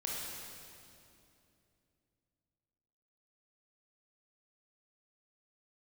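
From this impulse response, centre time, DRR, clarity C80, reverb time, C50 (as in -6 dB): 147 ms, -4.5 dB, 0.0 dB, 2.7 s, -2.0 dB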